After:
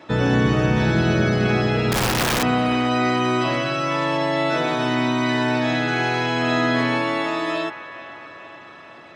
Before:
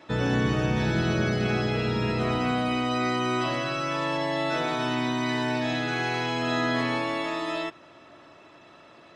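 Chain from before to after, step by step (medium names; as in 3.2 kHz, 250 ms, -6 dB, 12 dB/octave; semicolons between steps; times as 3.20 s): high-pass 50 Hz; treble shelf 2.9 kHz -3.5 dB; 1.91–2.43 s: integer overflow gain 21 dB; feedback echo behind a band-pass 441 ms, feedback 62%, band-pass 1.4 kHz, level -11.5 dB; trim +6.5 dB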